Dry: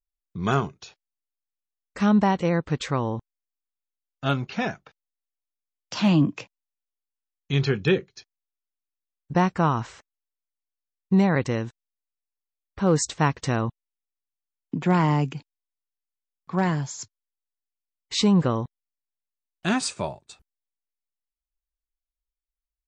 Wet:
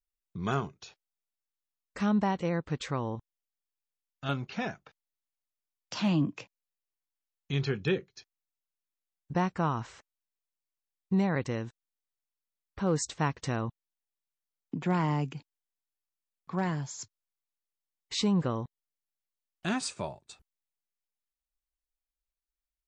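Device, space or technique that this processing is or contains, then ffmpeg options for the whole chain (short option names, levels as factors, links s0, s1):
parallel compression: -filter_complex "[0:a]asplit=2[s0][s1];[s1]acompressor=threshold=0.0158:ratio=6,volume=0.794[s2];[s0][s2]amix=inputs=2:normalize=0,asettb=1/sr,asplit=3[s3][s4][s5];[s3]atrim=end=3.154[s6];[s4]atrim=start=3.15:end=4.29,asetpts=PTS-STARTPTS,afade=t=in:d=0.004:c=qsin,afade=t=out:st=1.136:d=0.004:c=qsin,equalizer=f=400:w=0.47:g=-6[s7];[s5]atrim=start=4.286[s8];[s6][s7]acrossfade=d=0.004:c1=hsin:c2=qsin[s9];[s9][s8]acrossfade=d=0.004:c1=qsin:c2=hsin,volume=0.376"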